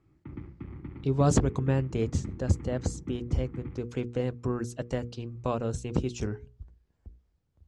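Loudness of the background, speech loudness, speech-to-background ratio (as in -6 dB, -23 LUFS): -43.5 LUFS, -30.5 LUFS, 13.0 dB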